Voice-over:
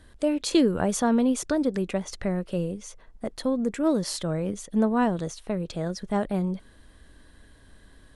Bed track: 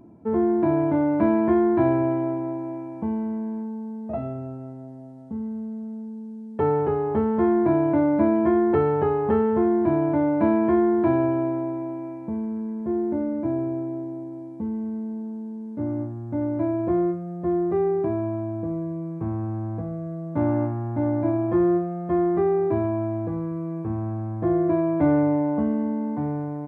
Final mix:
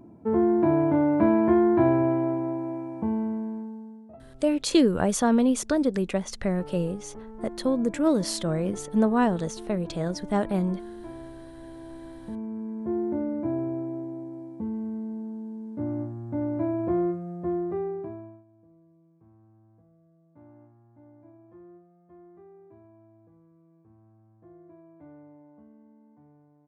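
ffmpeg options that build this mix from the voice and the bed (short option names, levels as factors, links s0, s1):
-filter_complex "[0:a]adelay=4200,volume=1.12[s0];[1:a]volume=7.08,afade=t=out:st=3.22:d=0.95:silence=0.1,afade=t=in:st=11.53:d=1.34:silence=0.133352,afade=t=out:st=17.29:d=1.15:silence=0.0446684[s1];[s0][s1]amix=inputs=2:normalize=0"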